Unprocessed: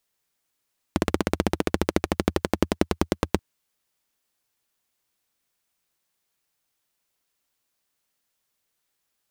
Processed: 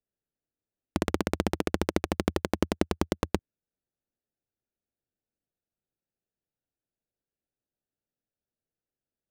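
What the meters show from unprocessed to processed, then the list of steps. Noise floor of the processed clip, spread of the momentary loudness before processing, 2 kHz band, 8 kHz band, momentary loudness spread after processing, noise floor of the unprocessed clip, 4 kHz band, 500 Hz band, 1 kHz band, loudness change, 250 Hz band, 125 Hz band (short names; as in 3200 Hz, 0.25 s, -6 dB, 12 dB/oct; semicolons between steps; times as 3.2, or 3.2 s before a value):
under -85 dBFS, 3 LU, -3.5 dB, -3.5 dB, 3 LU, -78 dBFS, -3.5 dB, -3.5 dB, -3.5 dB, -3.5 dB, -3.5 dB, -3.5 dB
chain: Wiener smoothing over 41 samples; gain -3.5 dB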